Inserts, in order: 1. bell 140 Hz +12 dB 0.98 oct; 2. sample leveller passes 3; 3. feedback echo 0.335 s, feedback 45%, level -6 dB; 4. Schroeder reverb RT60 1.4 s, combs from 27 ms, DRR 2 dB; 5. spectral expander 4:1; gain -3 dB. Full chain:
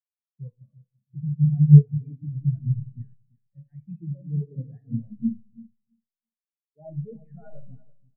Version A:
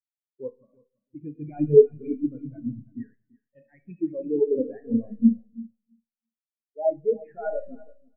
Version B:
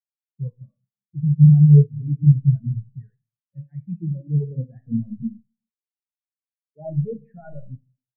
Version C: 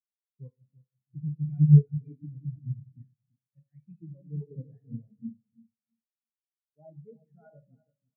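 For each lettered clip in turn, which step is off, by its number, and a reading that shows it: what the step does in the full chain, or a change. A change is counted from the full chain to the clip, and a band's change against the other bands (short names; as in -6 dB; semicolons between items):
1, loudness change -2.5 LU; 3, momentary loudness spread change -3 LU; 2, loudness change -4.0 LU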